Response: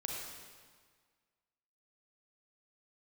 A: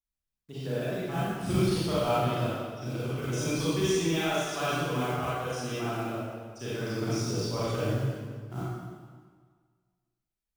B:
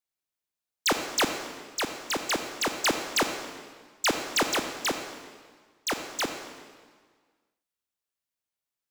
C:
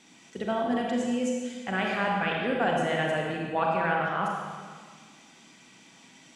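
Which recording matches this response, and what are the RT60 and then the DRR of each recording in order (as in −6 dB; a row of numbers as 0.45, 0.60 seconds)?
C; 1.7, 1.6, 1.7 seconds; −11.0, 6.0, −1.5 decibels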